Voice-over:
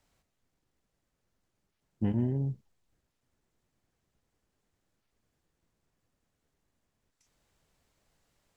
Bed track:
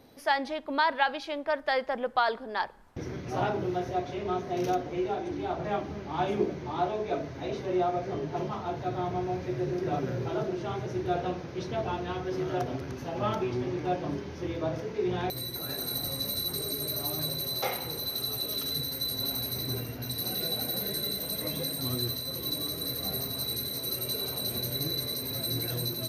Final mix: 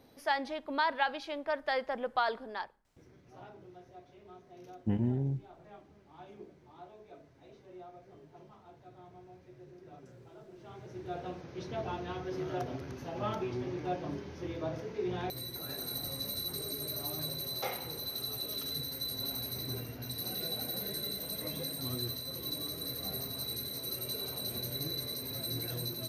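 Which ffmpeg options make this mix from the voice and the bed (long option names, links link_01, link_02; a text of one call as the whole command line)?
ffmpeg -i stem1.wav -i stem2.wav -filter_complex "[0:a]adelay=2850,volume=-1.5dB[link_01];[1:a]volume=12.5dB,afade=type=out:start_time=2.43:duration=0.39:silence=0.125893,afade=type=in:start_time=10.46:duration=1.37:silence=0.141254[link_02];[link_01][link_02]amix=inputs=2:normalize=0" out.wav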